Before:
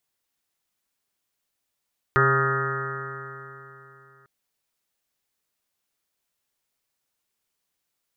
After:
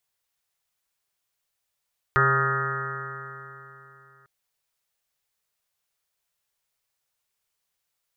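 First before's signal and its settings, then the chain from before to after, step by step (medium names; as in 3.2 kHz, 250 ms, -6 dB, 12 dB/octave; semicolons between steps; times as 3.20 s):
stretched partials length 2.10 s, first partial 133 Hz, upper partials -16.5/0/-13.5/-16.5/-14.5/-13/-11/2.5/0/-5.5/-5/-7 dB, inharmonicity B 0.0011, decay 3.24 s, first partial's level -22 dB
peaking EQ 270 Hz -14.5 dB 0.65 oct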